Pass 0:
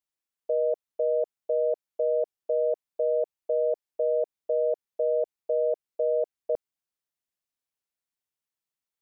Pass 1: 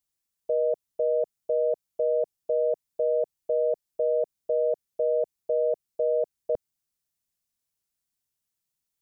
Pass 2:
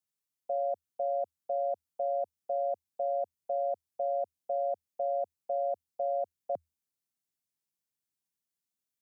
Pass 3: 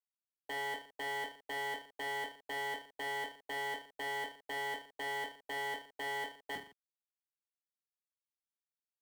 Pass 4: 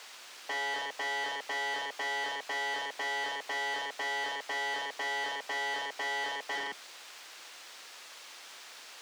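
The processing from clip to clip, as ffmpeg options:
ffmpeg -i in.wav -af "bass=frequency=250:gain=10,treble=frequency=4000:gain=8" out.wav
ffmpeg -i in.wav -af "afreqshift=79,volume=-6.5dB" out.wav
ffmpeg -i in.wav -filter_complex "[0:a]acrusher=bits=8:mix=0:aa=0.000001,aeval=exprs='0.0178*(abs(mod(val(0)/0.0178+3,4)-2)-1)':channel_layout=same,asplit=2[link_01][link_02];[link_02]aecho=0:1:20|45|76.25|115.3|164.1:0.631|0.398|0.251|0.158|0.1[link_03];[link_01][link_03]amix=inputs=2:normalize=0" out.wav
ffmpeg -i in.wav -filter_complex "[0:a]aeval=exprs='val(0)+0.5*0.00158*sgn(val(0))':channel_layout=same,asplit=2[link_01][link_02];[link_02]highpass=frequency=720:poles=1,volume=33dB,asoftclip=type=tanh:threshold=-29dB[link_03];[link_01][link_03]amix=inputs=2:normalize=0,lowpass=frequency=6900:poles=1,volume=-6dB,acrossover=split=270 7000:gain=0.178 1 0.2[link_04][link_05][link_06];[link_04][link_05][link_06]amix=inputs=3:normalize=0" out.wav

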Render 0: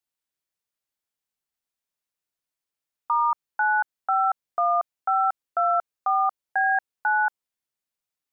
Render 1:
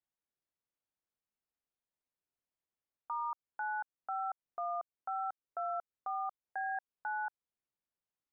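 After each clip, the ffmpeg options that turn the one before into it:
ffmpeg -i in.wav -af "lowpass=frequency=1000:poles=1,alimiter=level_in=4.5dB:limit=-24dB:level=0:latency=1:release=219,volume=-4.5dB,volume=-2dB" out.wav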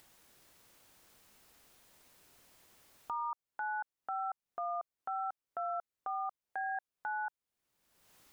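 ffmpeg -i in.wav -af "acompressor=mode=upward:threshold=-40dB:ratio=2.5" out.wav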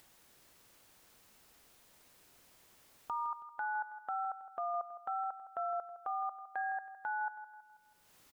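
ffmpeg -i in.wav -af "aecho=1:1:162|324|486|648|810:0.224|0.105|0.0495|0.0232|0.0109" out.wav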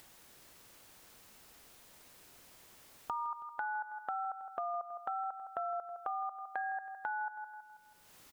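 ffmpeg -i in.wav -af "acompressor=threshold=-40dB:ratio=5,volume=5dB" out.wav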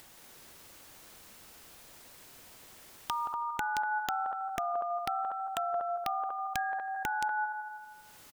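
ffmpeg -i in.wav -af "aecho=1:1:174.9|242:0.447|0.447,aeval=exprs='(mod(18.8*val(0)+1,2)-1)/18.8':channel_layout=same,volume=4dB" out.wav

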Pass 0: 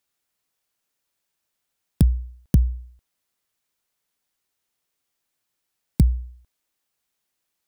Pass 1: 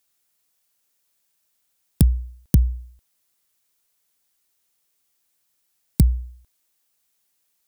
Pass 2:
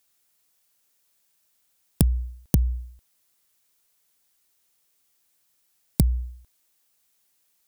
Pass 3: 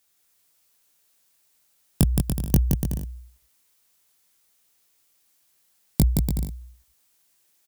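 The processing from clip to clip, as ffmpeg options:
ffmpeg -i in.wav -af "highshelf=frequency=4900:gain=9,volume=1dB" out.wav
ffmpeg -i in.wav -af "acompressor=threshold=-18dB:ratio=6,volume=2dB" out.wav
ffmpeg -i in.wav -filter_complex "[0:a]flanger=delay=17.5:depth=4.6:speed=1.7,asplit=2[link_01][link_02];[link_02]aecho=0:1:170|289|372.3|430.6|471.4:0.631|0.398|0.251|0.158|0.1[link_03];[link_01][link_03]amix=inputs=2:normalize=0,volume=4.5dB" out.wav

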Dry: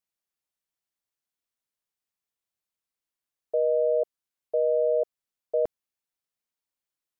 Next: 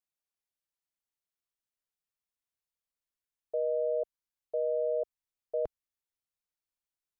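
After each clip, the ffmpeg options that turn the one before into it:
ffmpeg -i in.wav -af "asubboost=boost=3:cutoff=110,volume=-6dB" out.wav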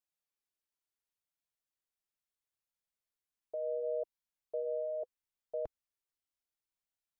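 ffmpeg -i in.wav -af "alimiter=level_in=3dB:limit=-24dB:level=0:latency=1:release=20,volume=-3dB,flanger=delay=1.2:depth=1.9:regen=-55:speed=0.71:shape=sinusoidal,volume=1.5dB" out.wav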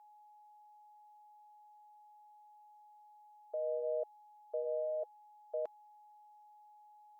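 ffmpeg -i in.wav -af "aeval=exprs='val(0)+0.001*sin(2*PI*840*n/s)':channel_layout=same,highpass=580,volume=3dB" out.wav

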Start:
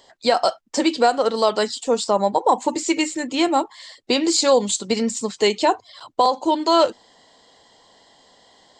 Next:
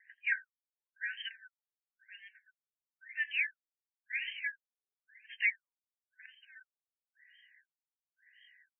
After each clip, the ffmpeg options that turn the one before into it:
ffmpeg -i in.wav -filter_complex "[0:a]asplit=4[link_01][link_02][link_03][link_04];[link_02]adelay=83,afreqshift=-56,volume=-20dB[link_05];[link_03]adelay=166,afreqshift=-112,volume=-27.3dB[link_06];[link_04]adelay=249,afreqshift=-168,volume=-34.7dB[link_07];[link_01][link_05][link_06][link_07]amix=inputs=4:normalize=0,afftfilt=real='re*(1-between(b*sr/4096,110,1500))':imag='im*(1-between(b*sr/4096,110,1500))':win_size=4096:overlap=0.75,afftfilt=real='re*between(b*sr/1024,500*pow(2300/500,0.5+0.5*sin(2*PI*0.97*pts/sr))/1.41,500*pow(2300/500,0.5+0.5*sin(2*PI*0.97*pts/sr))*1.41)':imag='im*between(b*sr/1024,500*pow(2300/500,0.5+0.5*sin(2*PI*0.97*pts/sr))/1.41,500*pow(2300/500,0.5+0.5*sin(2*PI*0.97*pts/sr))*1.41)':win_size=1024:overlap=0.75" out.wav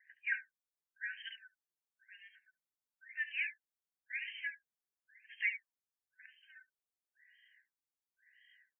ffmpeg -i in.wav -filter_complex "[0:a]acrossover=split=3000[link_01][link_02];[link_02]adelay=70[link_03];[link_01][link_03]amix=inputs=2:normalize=0,volume=-2.5dB" out.wav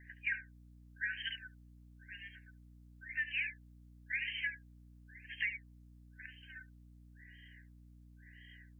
ffmpeg -i in.wav -af "acompressor=threshold=-40dB:ratio=10,aeval=exprs='val(0)+0.000631*(sin(2*PI*60*n/s)+sin(2*PI*2*60*n/s)/2+sin(2*PI*3*60*n/s)/3+sin(2*PI*4*60*n/s)/4+sin(2*PI*5*60*n/s)/5)':channel_layout=same,volume=7dB" out.wav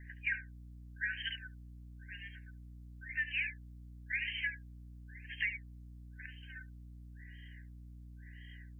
ffmpeg -i in.wav -af "lowshelf=frequency=200:gain=7.5,volume=1dB" out.wav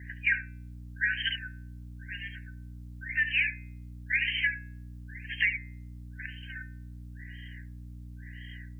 ffmpeg -i in.wav -af "highpass=54,bandreject=frequency=139:width_type=h:width=4,bandreject=frequency=278:width_type=h:width=4,bandreject=frequency=417:width_type=h:width=4,bandreject=frequency=556:width_type=h:width=4,bandreject=frequency=695:width_type=h:width=4,bandreject=frequency=834:width_type=h:width=4,bandreject=frequency=973:width_type=h:width=4,bandreject=frequency=1112:width_type=h:width=4,bandreject=frequency=1251:width_type=h:width=4,bandreject=frequency=1390:width_type=h:width=4,bandreject=frequency=1529:width_type=h:width=4,bandreject=frequency=1668:width_type=h:width=4,bandreject=frequency=1807:width_type=h:width=4,bandreject=frequency=1946:width_type=h:width=4,bandreject=frequency=2085:width_type=h:width=4,bandreject=frequency=2224:width_type=h:width=4,bandreject=frequency=2363:width_type=h:width=4,bandreject=frequency=2502:width_type=h:width=4,bandreject=frequency=2641:width_type=h:width=4,volume=9dB" out.wav

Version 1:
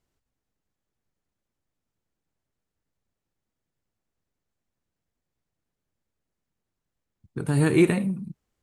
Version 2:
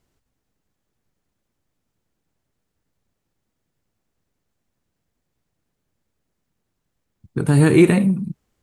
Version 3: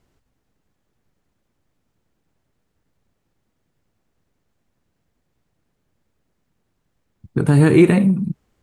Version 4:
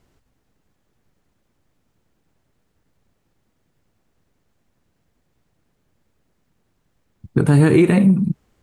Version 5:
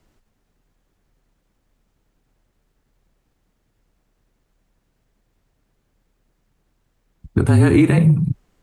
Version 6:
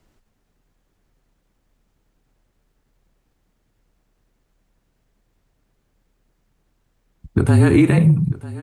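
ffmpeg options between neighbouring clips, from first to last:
ffmpeg -i in.wav -filter_complex "[0:a]equalizer=frequency=190:width=0.53:gain=2,asplit=2[link_01][link_02];[link_02]alimiter=limit=-15.5dB:level=0:latency=1,volume=-1.5dB[link_03];[link_01][link_03]amix=inputs=2:normalize=0,volume=2dB" out.wav
ffmpeg -i in.wav -filter_complex "[0:a]highshelf=frequency=4200:gain=-6.5,asplit=2[link_01][link_02];[link_02]acompressor=threshold=-23dB:ratio=6,volume=1dB[link_03];[link_01][link_03]amix=inputs=2:normalize=0,volume=-1dB" out.wav
ffmpeg -i in.wav -af "alimiter=limit=-8.5dB:level=0:latency=1:release=177,volume=3.5dB" out.wav
ffmpeg -i in.wav -af "afreqshift=-36" out.wav
ffmpeg -i in.wav -af "aecho=1:1:945:0.119" out.wav

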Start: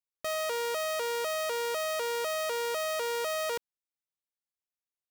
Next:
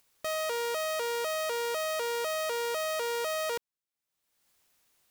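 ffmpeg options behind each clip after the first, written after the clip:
ffmpeg -i in.wav -af "acompressor=mode=upward:threshold=-50dB:ratio=2.5" out.wav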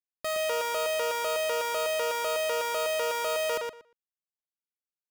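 ffmpeg -i in.wav -filter_complex "[0:a]alimiter=level_in=5dB:limit=-24dB:level=0:latency=1,volume=-5dB,acrusher=bits=7:mix=0:aa=0.000001,asplit=2[link_01][link_02];[link_02]adelay=118,lowpass=frequency=4400:poles=1,volume=-3dB,asplit=2[link_03][link_04];[link_04]adelay=118,lowpass=frequency=4400:poles=1,volume=0.17,asplit=2[link_05][link_06];[link_06]adelay=118,lowpass=frequency=4400:poles=1,volume=0.17[link_07];[link_03][link_05][link_07]amix=inputs=3:normalize=0[link_08];[link_01][link_08]amix=inputs=2:normalize=0,volume=4dB" out.wav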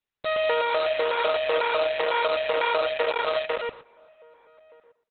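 ffmpeg -i in.wav -filter_complex "[0:a]asplit=2[link_01][link_02];[link_02]adelay=1224,volume=-27dB,highshelf=frequency=4000:gain=-27.6[link_03];[link_01][link_03]amix=inputs=2:normalize=0,aeval=exprs='0.1*(cos(1*acos(clip(val(0)/0.1,-1,1)))-cos(1*PI/2))+0.000708*(cos(8*acos(clip(val(0)/0.1,-1,1)))-cos(8*PI/2))':channel_layout=same,volume=6.5dB" -ar 48000 -c:a libopus -b:a 8k out.opus

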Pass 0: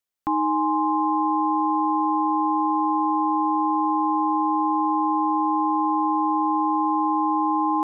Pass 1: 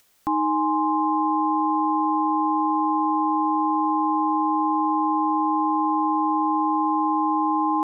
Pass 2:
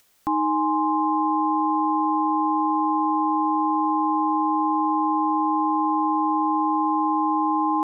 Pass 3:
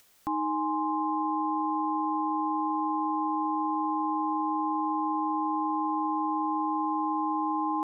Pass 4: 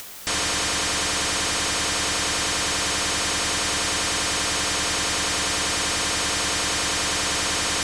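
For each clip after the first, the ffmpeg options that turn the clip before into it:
ffmpeg -i in.wav -af "acompressor=mode=upward:threshold=-41dB:ratio=2.5" out.wav
ffmpeg -i in.wav -af anull out.wav
ffmpeg -i in.wav -af "alimiter=limit=-21.5dB:level=0:latency=1:release=73" out.wav
ffmpeg -i in.wav -af "aeval=exprs='0.0891*sin(PI/2*8.91*val(0)/0.0891)':channel_layout=same" out.wav

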